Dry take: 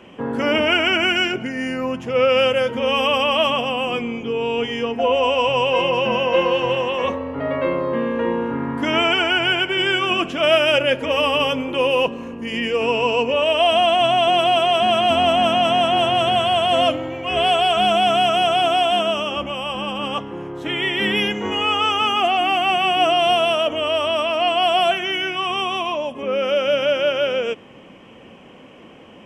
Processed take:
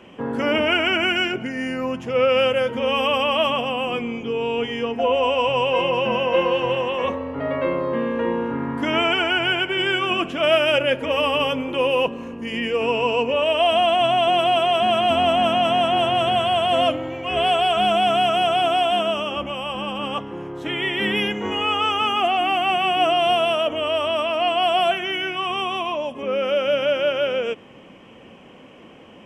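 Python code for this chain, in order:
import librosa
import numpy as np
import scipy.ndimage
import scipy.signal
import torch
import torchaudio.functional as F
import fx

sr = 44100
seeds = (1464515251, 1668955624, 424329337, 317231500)

y = fx.dynamic_eq(x, sr, hz=5600.0, q=1.1, threshold_db=-38.0, ratio=4.0, max_db=-5)
y = F.gain(torch.from_numpy(y), -1.5).numpy()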